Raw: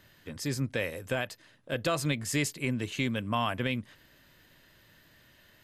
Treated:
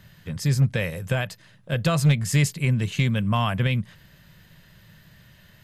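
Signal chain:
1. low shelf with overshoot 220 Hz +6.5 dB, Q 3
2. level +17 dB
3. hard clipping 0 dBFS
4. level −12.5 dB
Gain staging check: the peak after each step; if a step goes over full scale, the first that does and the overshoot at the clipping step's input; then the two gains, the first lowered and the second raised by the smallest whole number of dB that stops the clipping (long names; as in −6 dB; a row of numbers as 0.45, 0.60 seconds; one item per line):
−13.5, +3.5, 0.0, −12.5 dBFS
step 2, 3.5 dB
step 2 +13 dB, step 4 −8.5 dB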